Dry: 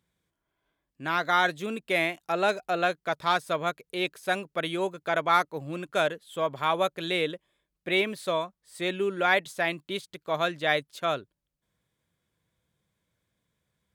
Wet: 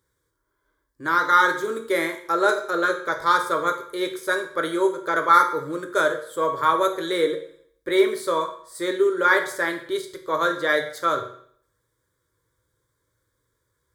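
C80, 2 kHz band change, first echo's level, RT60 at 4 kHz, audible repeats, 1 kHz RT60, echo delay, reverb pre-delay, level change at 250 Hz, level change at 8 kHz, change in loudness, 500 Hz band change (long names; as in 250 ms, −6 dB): 12.5 dB, +5.5 dB, no echo audible, 0.60 s, no echo audible, 0.60 s, no echo audible, 8 ms, +5.5 dB, +7.5 dB, +5.5 dB, +6.0 dB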